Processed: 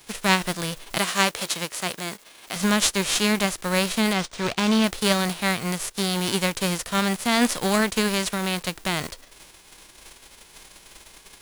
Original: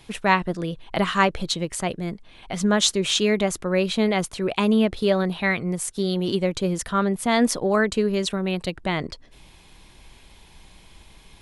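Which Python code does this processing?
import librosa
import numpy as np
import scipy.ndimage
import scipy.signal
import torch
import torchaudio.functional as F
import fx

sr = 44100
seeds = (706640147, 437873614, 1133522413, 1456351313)

y = fx.envelope_flatten(x, sr, power=0.3)
y = fx.highpass(y, sr, hz=280.0, slope=6, at=(0.98, 2.56))
y = fx.resample_linear(y, sr, factor=3, at=(4.13, 4.84))
y = y * 10.0 ** (-1.0 / 20.0)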